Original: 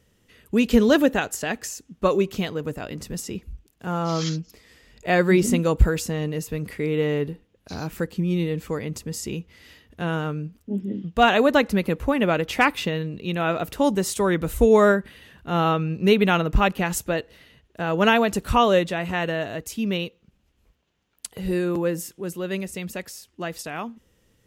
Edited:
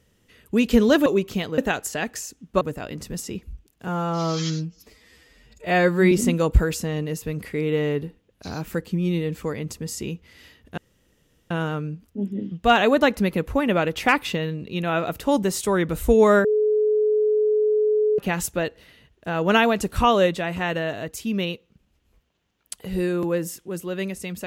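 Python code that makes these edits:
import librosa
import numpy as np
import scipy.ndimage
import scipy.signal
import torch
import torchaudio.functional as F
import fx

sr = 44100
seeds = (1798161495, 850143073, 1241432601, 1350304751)

y = fx.edit(x, sr, fx.move(start_s=2.09, length_s=0.52, to_s=1.06),
    fx.stretch_span(start_s=3.88, length_s=1.49, factor=1.5),
    fx.insert_room_tone(at_s=10.03, length_s=0.73),
    fx.bleep(start_s=14.97, length_s=1.74, hz=426.0, db=-16.5), tone=tone)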